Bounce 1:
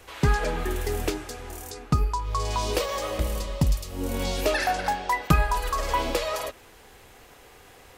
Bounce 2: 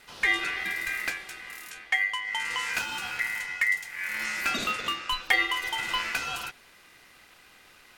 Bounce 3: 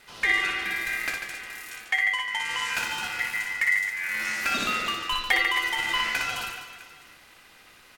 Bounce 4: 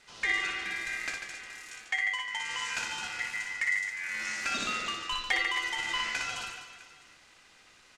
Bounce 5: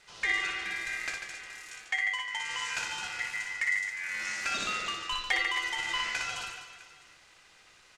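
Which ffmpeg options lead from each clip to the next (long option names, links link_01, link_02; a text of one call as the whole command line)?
ffmpeg -i in.wav -af "aeval=exprs='val(0)*sin(2*PI*2000*n/s)':channel_layout=same,volume=-1.5dB" out.wav
ffmpeg -i in.wav -af "aecho=1:1:60|144|261.6|426.2|656.7:0.631|0.398|0.251|0.158|0.1" out.wav
ffmpeg -i in.wav -af "lowpass=frequency=7100:width_type=q:width=1.8,volume=-6.5dB" out.wav
ffmpeg -i in.wav -af "equalizer=frequency=250:width=3.4:gain=-7.5" out.wav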